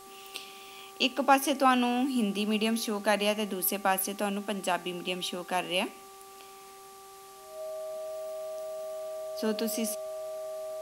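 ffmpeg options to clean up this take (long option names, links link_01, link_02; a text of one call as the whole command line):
ffmpeg -i in.wav -af "bandreject=frequency=389.4:width_type=h:width=4,bandreject=frequency=778.8:width_type=h:width=4,bandreject=frequency=1168.2:width_type=h:width=4,bandreject=frequency=630:width=30,afwtdn=0.0022" out.wav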